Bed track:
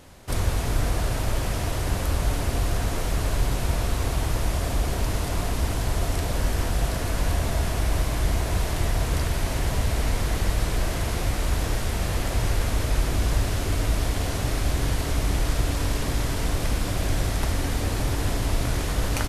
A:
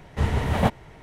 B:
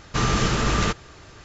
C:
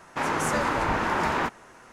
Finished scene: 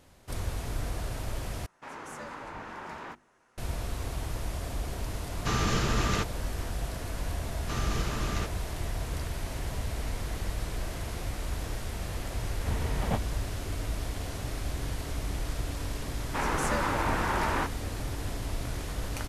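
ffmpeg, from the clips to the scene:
-filter_complex "[3:a]asplit=2[a][b];[2:a]asplit=2[c][d];[0:a]volume=-9.5dB[e];[a]bandreject=f=50:t=h:w=6,bandreject=f=100:t=h:w=6,bandreject=f=150:t=h:w=6,bandreject=f=200:t=h:w=6,bandreject=f=250:t=h:w=6,bandreject=f=300:t=h:w=6,bandreject=f=350:t=h:w=6[f];[e]asplit=2[g][h];[g]atrim=end=1.664[i];[f]atrim=end=1.92,asetpts=PTS-STARTPTS,volume=-16dB[j];[h]atrim=start=3.576[k];[c]atrim=end=1.44,asetpts=PTS-STARTPTS,volume=-6.5dB,afade=t=in:d=0.004:c=hsin,afade=t=out:st=1.436:d=0.004:c=hsin,adelay=5310[l];[d]atrim=end=1.44,asetpts=PTS-STARTPTS,volume=-12.5dB,afade=t=in:d=0.004:c=hsin,afade=t=out:st=1.436:d=0.004:c=hsin,adelay=332514S[m];[1:a]atrim=end=1.02,asetpts=PTS-STARTPTS,volume=-10dB,afade=t=in:d=0.004:c=hsin,afade=t=out:st=1.016:d=0.004:c=hsin,adelay=12480[n];[b]atrim=end=1.92,asetpts=PTS-STARTPTS,volume=-4dB,afade=t=in:d=0.004:c=hsin,afade=t=out:st=1.916:d=0.004:c=hsin,adelay=16180[o];[i][j]acrossfade=d=0.004:c1=hsin:c2=hsin[p];[p][k]acrossfade=d=0.004:c1=hsin:c2=hsin[q];[q][l][m][n][o]amix=inputs=5:normalize=0"

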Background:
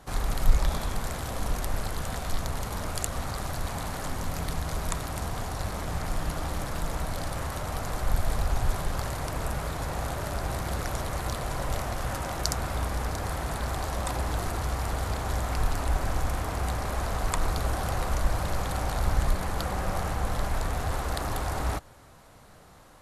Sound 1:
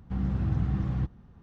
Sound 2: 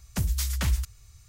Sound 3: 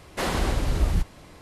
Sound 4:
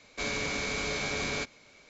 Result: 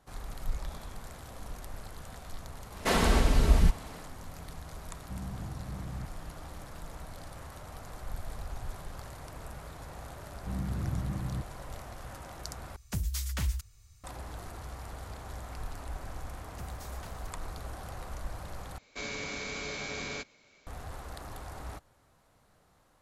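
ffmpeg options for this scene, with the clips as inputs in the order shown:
-filter_complex "[1:a]asplit=2[a][b];[2:a]asplit=2[c][d];[0:a]volume=-13dB[e];[3:a]aecho=1:1:4.5:0.39[f];[a]alimiter=level_in=3dB:limit=-24dB:level=0:latency=1:release=134,volume=-3dB[g];[d]acompressor=threshold=-26dB:ratio=6:attack=3.2:release=140:knee=1:detection=peak[h];[e]asplit=3[i][j][k];[i]atrim=end=12.764[l];[c]atrim=end=1.28,asetpts=PTS-STARTPTS,volume=-6dB[m];[j]atrim=start=14.036:end=18.784[n];[4:a]atrim=end=1.89,asetpts=PTS-STARTPTS,volume=-5.5dB[o];[k]atrim=start=20.666[p];[f]atrim=end=1.41,asetpts=PTS-STARTPTS,afade=t=in:d=0.1,afade=t=out:st=1.31:d=0.1,adelay=2680[q];[g]atrim=end=1.42,asetpts=PTS-STARTPTS,volume=-6dB,afade=t=in:d=0.004:c=hsin,afade=t=out:st=1.416:d=0.004:c=hsin,adelay=5000[r];[b]atrim=end=1.42,asetpts=PTS-STARTPTS,volume=-6dB,afade=t=in:d=0.004:c=hsin,afade=t=out:st=1.416:d=0.004:c=hsin,adelay=10360[s];[h]atrim=end=1.28,asetpts=PTS-STARTPTS,volume=-16.5dB,afade=t=in:d=0.004:c=hsin,afade=t=out:st=1.276:d=0.004:c=hsin,adelay=16420[t];[l][m]acrossfade=d=0.004:c1=hsin:c2=hsin[u];[u][n]acrossfade=d=0.004:c1=hsin:c2=hsin[v];[v][o]acrossfade=d=0.004:c1=hsin:c2=hsin[w];[w][p]acrossfade=d=0.004:c1=hsin:c2=hsin[x];[x][q][r][s][t]amix=inputs=5:normalize=0"

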